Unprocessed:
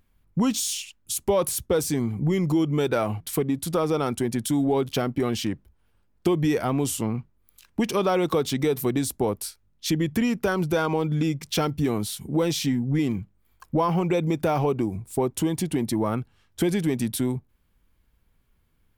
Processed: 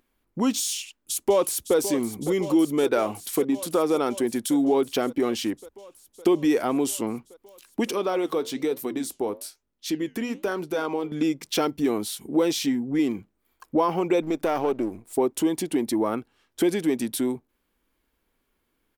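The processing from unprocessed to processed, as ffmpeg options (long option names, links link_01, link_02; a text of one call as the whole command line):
ffmpeg -i in.wav -filter_complex "[0:a]asplit=2[link_01][link_02];[link_02]afade=type=in:start_time=0.74:duration=0.01,afade=type=out:start_time=1.76:duration=0.01,aecho=0:1:560|1120|1680|2240|2800|3360|3920|4480|5040|5600|6160|6720:0.251189|0.200951|0.160761|0.128609|0.102887|0.0823095|0.0658476|0.0526781|0.0421425|0.033714|0.0269712|0.0215769[link_03];[link_01][link_03]amix=inputs=2:normalize=0,asettb=1/sr,asplit=3[link_04][link_05][link_06];[link_04]atrim=end=7.944[link_07];[link_05]atrim=start=7.94:end=11.12,asetpts=PTS-STARTPTS,afade=type=in:duration=0.004:curve=qsin,afade=type=out:start_time=3.176:duration=0.004:curve=qsin,flanger=delay=4:depth=6.5:regen=-81:speed=1.1:shape=sinusoidal[link_08];[link_06]atrim=start=11.116[link_09];[link_07][link_08]acrossfade=duration=0.004:curve1=hsin:curve2=qsin[link_10];[link_10][link_09]acrossfade=duration=0.004:curve1=qsin:curve2=hsin,asettb=1/sr,asplit=3[link_11][link_12][link_13];[link_11]atrim=end=14.224[link_14];[link_12]atrim=start=14.22:end=15.13,asetpts=PTS-STARTPTS,afade=type=in:duration=0.004:curve=qsin,afade=type=out:start_time=0.906:duration=0.004:curve=qsin,aeval=exprs='if(lt(val(0),0),0.447*val(0),val(0))':channel_layout=same[link_15];[link_13]atrim=start=15.126[link_16];[link_14][link_15]acrossfade=duration=0.004:curve1=hsin:curve2=qsin[link_17];[link_17][link_16]acrossfade=duration=0.004:curve1=qsin:curve2=hsin,lowshelf=frequency=200:width_type=q:width=1.5:gain=-12" out.wav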